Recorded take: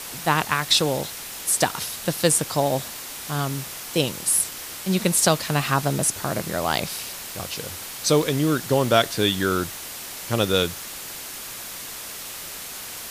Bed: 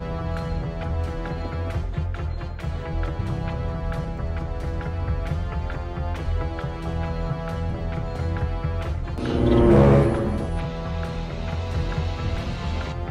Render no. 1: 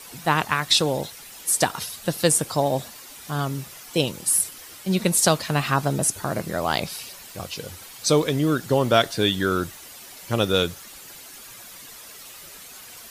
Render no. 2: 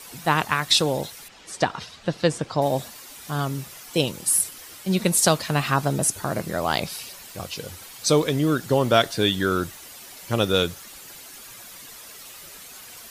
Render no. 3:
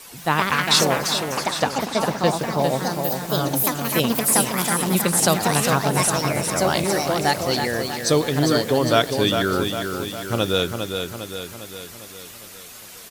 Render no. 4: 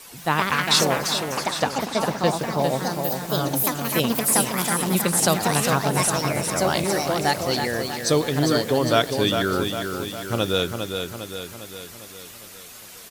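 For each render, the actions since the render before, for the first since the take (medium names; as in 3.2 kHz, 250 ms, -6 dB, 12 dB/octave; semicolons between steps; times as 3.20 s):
noise reduction 10 dB, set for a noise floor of -36 dBFS
1.28–2.62 s: distance through air 140 m
feedback delay 404 ms, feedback 55%, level -6 dB; ever faster or slower copies 175 ms, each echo +4 st, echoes 2
trim -1.5 dB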